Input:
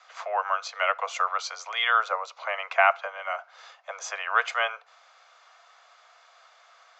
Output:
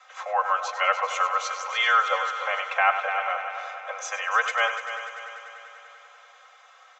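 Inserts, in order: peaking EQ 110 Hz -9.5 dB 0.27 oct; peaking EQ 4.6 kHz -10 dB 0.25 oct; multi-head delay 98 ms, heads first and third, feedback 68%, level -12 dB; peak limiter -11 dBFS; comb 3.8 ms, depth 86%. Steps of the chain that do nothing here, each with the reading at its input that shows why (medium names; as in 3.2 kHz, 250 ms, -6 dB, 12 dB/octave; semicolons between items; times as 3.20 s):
peaking EQ 110 Hz: input has nothing below 430 Hz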